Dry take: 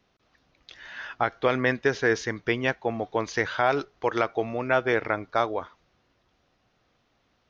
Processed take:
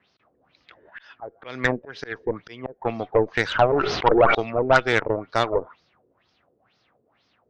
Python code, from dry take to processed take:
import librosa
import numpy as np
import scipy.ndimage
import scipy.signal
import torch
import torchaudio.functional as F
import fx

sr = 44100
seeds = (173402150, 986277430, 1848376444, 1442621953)

y = scipy.signal.sosfilt(scipy.signal.butter(2, 88.0, 'highpass', fs=sr, output='sos'), x)
y = fx.auto_swell(y, sr, attack_ms=329.0, at=(0.89, 2.8), fade=0.02)
y = fx.filter_lfo_lowpass(y, sr, shape='sine', hz=2.1, low_hz=420.0, high_hz=5200.0, q=4.7)
y = fx.cheby_harmonics(y, sr, harmonics=(6,), levels_db=(-19,), full_scale_db=-3.0)
y = fx.sustainer(y, sr, db_per_s=40.0, at=(3.72, 4.35))